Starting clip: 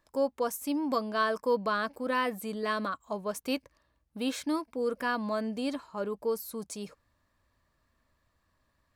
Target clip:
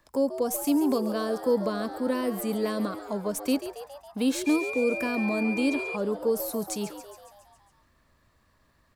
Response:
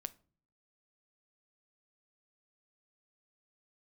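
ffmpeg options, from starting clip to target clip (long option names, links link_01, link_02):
-filter_complex "[0:a]acrossover=split=270|480|5200[link_01][link_02][link_03][link_04];[link_03]acompressor=threshold=-45dB:ratio=6[link_05];[link_04]aeval=exprs='0.0501*(cos(1*acos(clip(val(0)/0.0501,-1,1)))-cos(1*PI/2))+0.002*(cos(6*acos(clip(val(0)/0.0501,-1,1)))-cos(6*PI/2))':channel_layout=same[link_06];[link_01][link_02][link_05][link_06]amix=inputs=4:normalize=0,asplit=8[link_07][link_08][link_09][link_10][link_11][link_12][link_13][link_14];[link_08]adelay=138,afreqshift=100,volume=-12dB[link_15];[link_09]adelay=276,afreqshift=200,volume=-16.2dB[link_16];[link_10]adelay=414,afreqshift=300,volume=-20.3dB[link_17];[link_11]adelay=552,afreqshift=400,volume=-24.5dB[link_18];[link_12]adelay=690,afreqshift=500,volume=-28.6dB[link_19];[link_13]adelay=828,afreqshift=600,volume=-32.8dB[link_20];[link_14]adelay=966,afreqshift=700,volume=-36.9dB[link_21];[link_07][link_15][link_16][link_17][link_18][link_19][link_20][link_21]amix=inputs=8:normalize=0,asettb=1/sr,asplit=3[link_22][link_23][link_24];[link_22]atrim=end=4.464[link_25];[link_23]atrim=start=4.46:end=5.96,asetpts=PTS-STARTPTS,afade=type=in:duration=0.004:curve=qsin,afade=type=out:start_time=1.496:duration=0.004:curve=qsin,aeval=exprs='val(0)+0.01*sin(2*PI*2400*n/s)':channel_layout=same[link_26];[link_24]atrim=start=5.956[link_27];[link_25][link_26]acrossfade=duration=0.004:curve1=hsin:curve2=qsin[link_28];[link_28][link_27]acrossfade=duration=0.004:curve1=qsin:curve2=hsin,volume=7.5dB"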